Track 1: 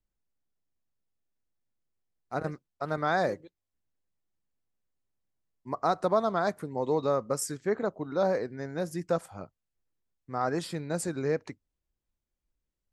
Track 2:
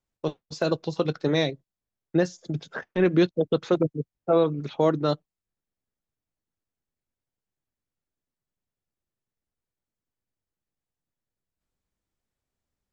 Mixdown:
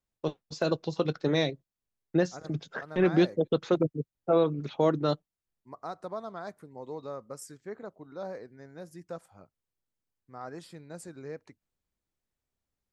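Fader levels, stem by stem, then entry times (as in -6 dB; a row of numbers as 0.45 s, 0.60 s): -12.0 dB, -3.0 dB; 0.00 s, 0.00 s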